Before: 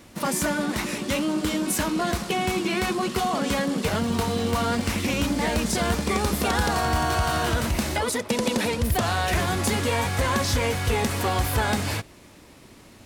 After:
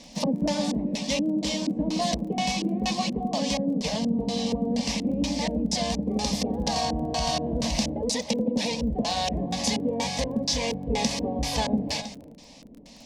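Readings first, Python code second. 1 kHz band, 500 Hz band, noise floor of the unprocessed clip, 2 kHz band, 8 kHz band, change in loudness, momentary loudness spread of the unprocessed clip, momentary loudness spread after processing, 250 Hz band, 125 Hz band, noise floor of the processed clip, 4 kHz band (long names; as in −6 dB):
−5.0 dB, −3.0 dB, −49 dBFS, −9.5 dB, −2.5 dB, −2.5 dB, 2 LU, 2 LU, +0.5 dB, −6.0 dB, −48 dBFS, +0.5 dB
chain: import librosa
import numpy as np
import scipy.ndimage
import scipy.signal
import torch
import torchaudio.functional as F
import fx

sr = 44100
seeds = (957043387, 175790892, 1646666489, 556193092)

y = x + 10.0 ** (-14.0 / 20.0) * np.pad(x, (int(322 * sr / 1000.0), 0))[:len(x)]
y = fx.filter_lfo_lowpass(y, sr, shape='square', hz=2.1, low_hz=380.0, high_hz=5500.0, q=2.4)
y = fx.fixed_phaser(y, sr, hz=370.0, stages=6)
y = fx.dmg_crackle(y, sr, seeds[0], per_s=18.0, level_db=-40.0)
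y = fx.rider(y, sr, range_db=10, speed_s=0.5)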